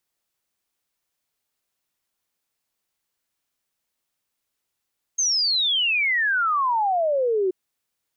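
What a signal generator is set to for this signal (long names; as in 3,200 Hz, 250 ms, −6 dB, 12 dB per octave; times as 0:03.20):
exponential sine sweep 6,500 Hz → 360 Hz 2.33 s −18.5 dBFS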